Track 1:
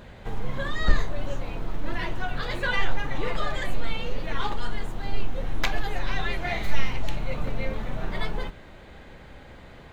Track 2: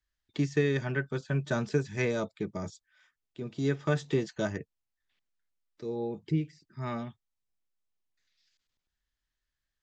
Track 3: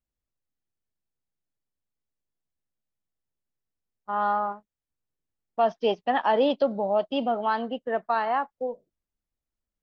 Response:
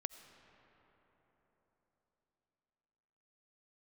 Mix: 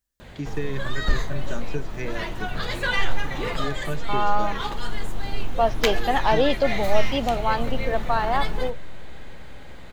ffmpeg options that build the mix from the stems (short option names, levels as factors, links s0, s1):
-filter_complex "[0:a]highshelf=f=4000:g=7.5,adelay=200,volume=0.794,asplit=2[s0][s1];[s1]volume=0.596[s2];[1:a]volume=0.668,asplit=2[s3][s4];[2:a]bass=f=250:g=-1,treble=f=4000:g=10,volume=1.19[s5];[s4]apad=whole_len=446612[s6];[s0][s6]sidechaincompress=threshold=0.0316:ratio=8:attack=16:release=1270[s7];[3:a]atrim=start_sample=2205[s8];[s2][s8]afir=irnorm=-1:irlink=0[s9];[s7][s3][s5][s9]amix=inputs=4:normalize=0"